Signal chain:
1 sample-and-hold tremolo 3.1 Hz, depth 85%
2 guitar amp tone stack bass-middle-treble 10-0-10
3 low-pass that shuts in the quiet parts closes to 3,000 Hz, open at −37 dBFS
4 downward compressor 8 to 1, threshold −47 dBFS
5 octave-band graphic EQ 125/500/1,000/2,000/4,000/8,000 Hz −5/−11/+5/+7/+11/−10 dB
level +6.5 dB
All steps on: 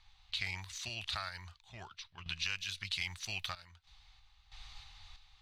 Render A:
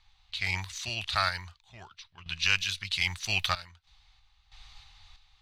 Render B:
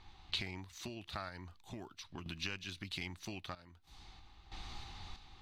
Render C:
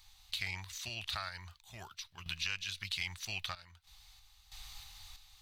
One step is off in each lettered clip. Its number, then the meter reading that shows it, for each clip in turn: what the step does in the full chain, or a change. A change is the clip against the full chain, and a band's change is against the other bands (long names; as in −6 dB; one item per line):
4, average gain reduction 5.0 dB
2, 250 Hz band +13.5 dB
3, change in crest factor +2.0 dB